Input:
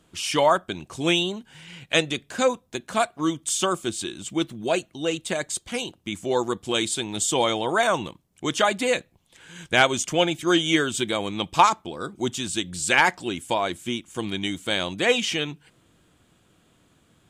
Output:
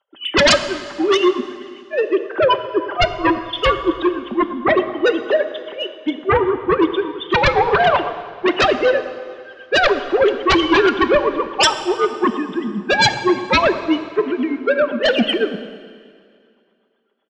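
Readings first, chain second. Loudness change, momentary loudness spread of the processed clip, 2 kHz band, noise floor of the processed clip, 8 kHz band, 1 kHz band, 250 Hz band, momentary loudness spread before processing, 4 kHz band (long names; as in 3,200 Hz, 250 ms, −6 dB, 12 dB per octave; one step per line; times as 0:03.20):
+6.5 dB, 10 LU, +6.5 dB, −57 dBFS, −3.5 dB, +6.5 dB, +7.5 dB, 11 LU, +5.0 dB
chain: three sine waves on the formant tracks
de-essing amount 65%
parametric band 2,400 Hz −14.5 dB 0.3 octaves
comb filter 5.1 ms, depth 49%
in parallel at −2 dB: brickwall limiter −15 dBFS, peak gain reduction 11 dB
on the sum: amplitude tremolo 7.9 Hz, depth 86%
sine wavefolder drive 14 dB, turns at −5.5 dBFS
on a send: bucket-brigade delay 107 ms, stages 1,024, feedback 70%, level −14 dB
on the sum: dense smooth reverb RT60 3.2 s, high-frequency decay 0.95×, DRR 10 dB
multiband upward and downward expander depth 40%
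level −4.5 dB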